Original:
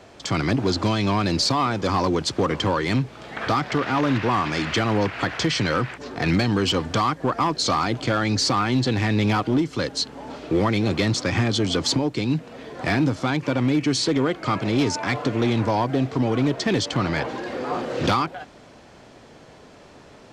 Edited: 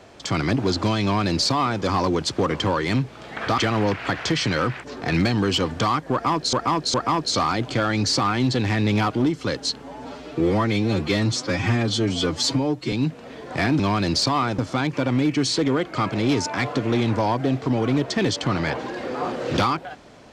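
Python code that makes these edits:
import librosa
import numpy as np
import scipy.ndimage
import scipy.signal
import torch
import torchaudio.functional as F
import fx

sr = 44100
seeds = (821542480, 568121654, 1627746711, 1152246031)

y = fx.edit(x, sr, fx.duplicate(start_s=1.03, length_s=0.79, to_s=13.08),
    fx.cut(start_s=3.58, length_s=1.14),
    fx.repeat(start_s=7.26, length_s=0.41, count=3),
    fx.stretch_span(start_s=10.14, length_s=2.07, factor=1.5), tone=tone)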